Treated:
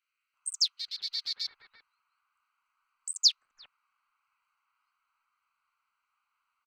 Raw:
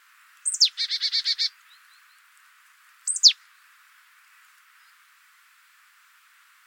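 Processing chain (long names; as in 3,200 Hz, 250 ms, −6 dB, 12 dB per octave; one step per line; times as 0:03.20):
adaptive Wiener filter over 25 samples
multiband delay without the direct sound highs, lows 340 ms, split 1,800 Hz
level −8 dB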